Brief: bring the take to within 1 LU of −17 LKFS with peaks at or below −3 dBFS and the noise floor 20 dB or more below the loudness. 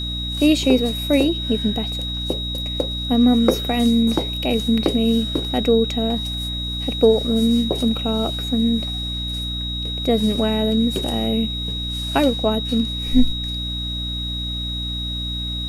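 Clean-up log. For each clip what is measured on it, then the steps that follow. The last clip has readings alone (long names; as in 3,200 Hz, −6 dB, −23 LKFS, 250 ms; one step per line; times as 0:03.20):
mains hum 60 Hz; hum harmonics up to 300 Hz; level of the hum −26 dBFS; interfering tone 3,800 Hz; level of the tone −26 dBFS; integrated loudness −20.5 LKFS; sample peak −3.5 dBFS; target loudness −17.0 LKFS
→ hum removal 60 Hz, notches 5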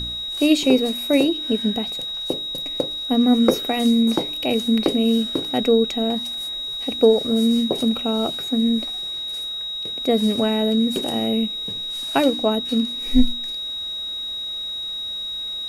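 mains hum none found; interfering tone 3,800 Hz; level of the tone −26 dBFS
→ notch filter 3,800 Hz, Q 30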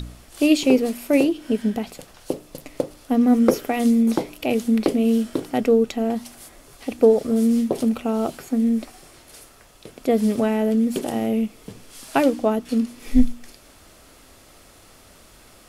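interfering tone none found; integrated loudness −21.0 LKFS; sample peak −4.0 dBFS; target loudness −17.0 LKFS
→ level +4 dB
brickwall limiter −3 dBFS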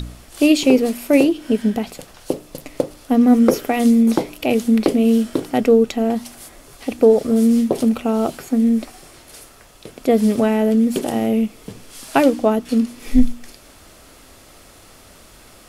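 integrated loudness −17.5 LKFS; sample peak −3.0 dBFS; background noise floor −46 dBFS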